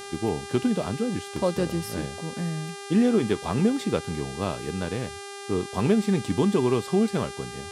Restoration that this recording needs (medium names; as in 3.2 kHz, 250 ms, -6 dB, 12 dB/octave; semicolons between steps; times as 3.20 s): de-hum 399.8 Hz, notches 28; expander -31 dBFS, range -21 dB